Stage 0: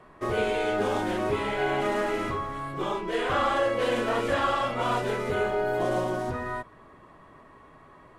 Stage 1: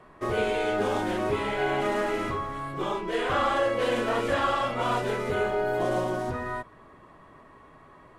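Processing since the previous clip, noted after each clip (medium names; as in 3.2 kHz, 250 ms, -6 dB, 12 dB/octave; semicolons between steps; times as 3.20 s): no audible change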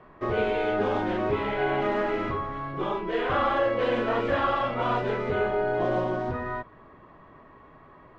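distance through air 220 m; trim +1.5 dB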